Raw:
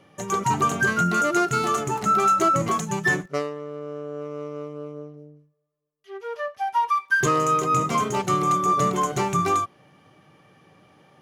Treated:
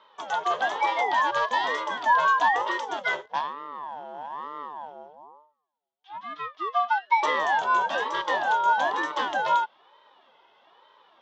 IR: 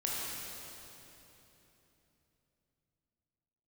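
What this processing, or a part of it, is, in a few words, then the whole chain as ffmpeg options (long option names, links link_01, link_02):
voice changer toy: -af "aeval=exprs='val(0)*sin(2*PI*490*n/s+490*0.55/1.1*sin(2*PI*1.1*n/s))':channel_layout=same,highpass=550,equalizer=frequency=970:width_type=q:width=4:gain=7,equalizer=frequency=1500:width_type=q:width=4:gain=-3,equalizer=frequency=2400:width_type=q:width=4:gain=-7,equalizer=frequency=3300:width_type=q:width=4:gain=10,lowpass=frequency=4700:width=0.5412,lowpass=frequency=4700:width=1.3066"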